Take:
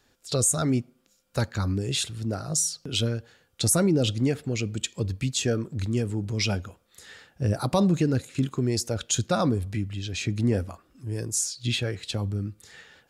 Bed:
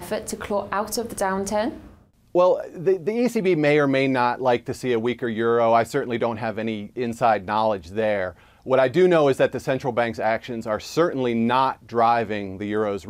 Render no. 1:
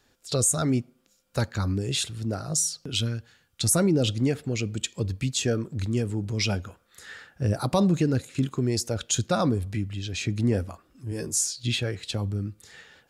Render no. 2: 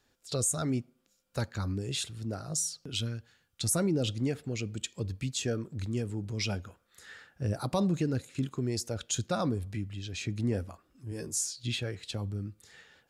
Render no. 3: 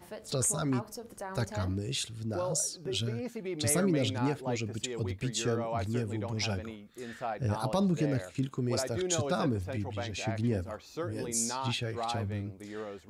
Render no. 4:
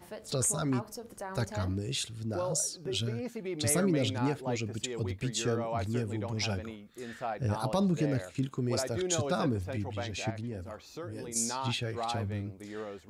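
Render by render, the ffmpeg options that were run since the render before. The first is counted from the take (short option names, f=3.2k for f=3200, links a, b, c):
-filter_complex "[0:a]asettb=1/sr,asplit=3[a][b][c];[a]atrim=end=2.914[d];[b]atrim=start=2.91:end=3.68,asetpts=PTS-STARTPTS,afade=t=in:d=0.004:c=qsin,afade=t=out:st=0.766:d=0.004:c=qsin,equalizer=f=510:w=0.99:g=-9[e];[c]atrim=start=3.676[f];[d][e]acrossfade=d=0.004:c1=hsin:c2=qsin[g];[g][f]acrossfade=d=0.004:c1=qsin:c2=hsin,asettb=1/sr,asplit=3[h][i][j];[h]atrim=end=6.664[k];[i]atrim=start=6.66:end=7.43,asetpts=PTS-STARTPTS,afade=t=in:d=0.004:c=qsin,afade=t=out:st=0.766:d=0.004:c=qsin,equalizer=f=1.5k:w=1.7:g=7.5[l];[j]atrim=start=7.426[m];[k][l]acrossfade=d=0.004:c1=hsin:c2=qsin[n];[n][m]acrossfade=d=0.004:c1=qsin:c2=hsin,asettb=1/sr,asplit=3[o][p][q];[o]atrim=end=11.104[r];[p]atrim=start=11.1:end=11.64,asetpts=PTS-STARTPTS,afade=t=in:d=0.004:c=qsin,afade=t=out:st=0.536:d=0.004:c=qsin,asplit=2[s][t];[t]adelay=13,volume=-3dB[u];[s][u]amix=inputs=2:normalize=0,atrim=end_sample=23814[v];[q]atrim=start=11.636[w];[r][v]acrossfade=d=0.004:c1=hsin:c2=qsin[x];[x][w]acrossfade=d=0.004:c1=qsin:c2=hsin"
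-af "volume=-6.5dB"
-filter_complex "[1:a]volume=-17dB[a];[0:a][a]amix=inputs=2:normalize=0"
-filter_complex "[0:a]asettb=1/sr,asplit=3[a][b][c];[a]atrim=end=10.304[d];[b]atrim=start=10.3:end=11.36,asetpts=PTS-STARTPTS,afade=t=in:d=0.004:c=qsin,afade=t=out:st=1.056:d=0.004:c=qsin,acompressor=threshold=-38dB:ratio=2.5:attack=3.2:release=140:knee=1:detection=peak[e];[c]atrim=start=11.356[f];[d][e]acrossfade=d=0.004:c1=hsin:c2=qsin[g];[g][f]acrossfade=d=0.004:c1=qsin:c2=hsin"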